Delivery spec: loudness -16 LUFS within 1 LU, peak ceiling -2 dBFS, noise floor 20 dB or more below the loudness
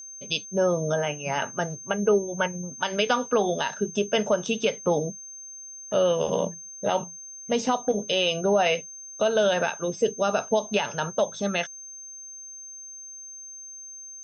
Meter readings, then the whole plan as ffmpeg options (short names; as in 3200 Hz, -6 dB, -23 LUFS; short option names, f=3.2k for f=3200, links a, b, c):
steady tone 6300 Hz; tone level -39 dBFS; loudness -25.5 LUFS; peak -9.5 dBFS; loudness target -16.0 LUFS
-> -af "bandreject=f=6.3k:w=30"
-af "volume=9.5dB,alimiter=limit=-2dB:level=0:latency=1"